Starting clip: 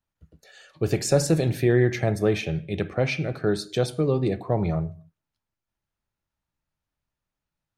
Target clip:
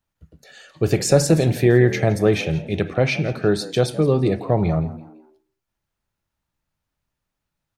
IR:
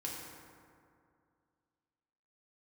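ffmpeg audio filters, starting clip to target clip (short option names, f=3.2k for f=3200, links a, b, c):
-filter_complex "[0:a]asplit=4[a][b][c][d];[b]adelay=168,afreqshift=75,volume=-18dB[e];[c]adelay=336,afreqshift=150,volume=-26.6dB[f];[d]adelay=504,afreqshift=225,volume=-35.3dB[g];[a][e][f][g]amix=inputs=4:normalize=0,volume=5dB"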